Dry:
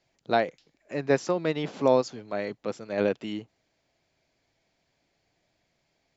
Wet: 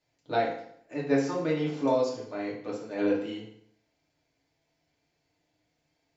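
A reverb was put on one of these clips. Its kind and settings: FDN reverb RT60 0.67 s, low-frequency decay 1×, high-frequency decay 0.85×, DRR -5.5 dB; gain -9.5 dB

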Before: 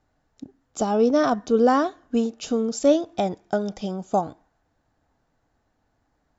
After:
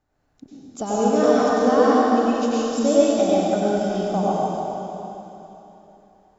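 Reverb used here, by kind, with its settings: plate-style reverb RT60 3.3 s, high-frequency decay 1×, pre-delay 80 ms, DRR -8.5 dB; gain -5 dB

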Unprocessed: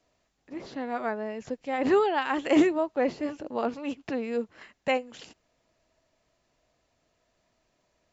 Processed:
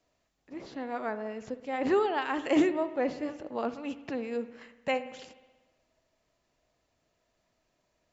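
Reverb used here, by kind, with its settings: spring tank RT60 1.2 s, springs 60 ms, chirp 50 ms, DRR 12.5 dB; gain -3.5 dB

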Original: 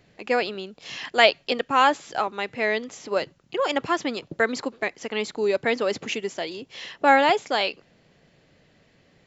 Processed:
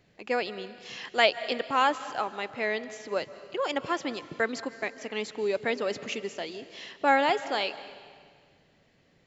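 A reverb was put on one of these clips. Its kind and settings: digital reverb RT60 1.8 s, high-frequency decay 0.95×, pre-delay 0.11 s, DRR 14 dB; gain -5.5 dB

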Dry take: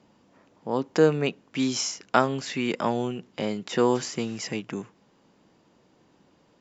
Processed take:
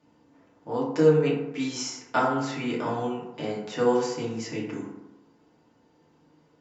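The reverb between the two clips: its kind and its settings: FDN reverb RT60 0.97 s, low-frequency decay 1×, high-frequency decay 0.4×, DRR -6 dB; gain -9 dB

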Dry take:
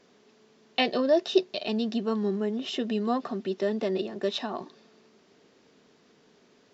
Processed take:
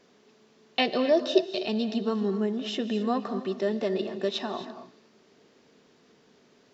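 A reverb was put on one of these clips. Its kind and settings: non-linear reverb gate 0.29 s rising, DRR 10.5 dB

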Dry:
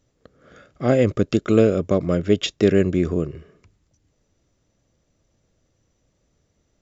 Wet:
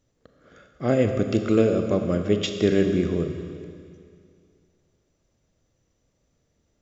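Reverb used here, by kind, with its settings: Schroeder reverb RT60 2.3 s, combs from 27 ms, DRR 5.5 dB; gain -4 dB

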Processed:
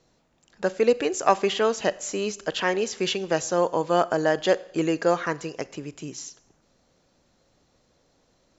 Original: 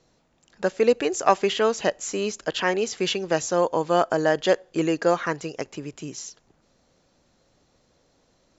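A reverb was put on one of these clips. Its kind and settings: Schroeder reverb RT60 0.73 s, combs from 31 ms, DRR 18.5 dB; gain -1 dB

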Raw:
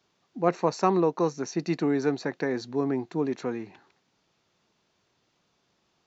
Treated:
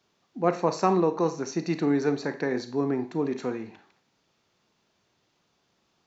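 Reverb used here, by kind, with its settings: Schroeder reverb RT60 0.39 s, combs from 28 ms, DRR 9 dB

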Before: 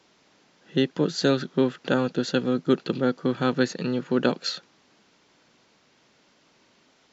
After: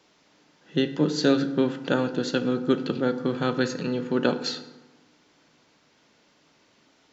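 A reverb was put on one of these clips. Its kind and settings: FDN reverb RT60 1.1 s, low-frequency decay 1.25×, high-frequency decay 0.55×, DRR 8.5 dB; gain -1 dB

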